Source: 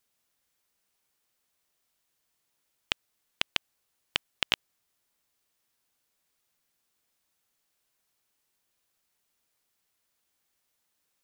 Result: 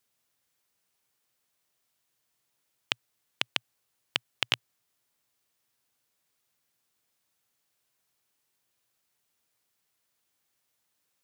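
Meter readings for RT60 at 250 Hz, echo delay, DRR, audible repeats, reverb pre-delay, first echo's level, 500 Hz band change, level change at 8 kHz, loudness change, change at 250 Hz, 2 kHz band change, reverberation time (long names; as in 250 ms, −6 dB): no reverb audible, no echo audible, no reverb audible, no echo audible, no reverb audible, no echo audible, 0.0 dB, 0.0 dB, 0.0 dB, 0.0 dB, 0.0 dB, no reverb audible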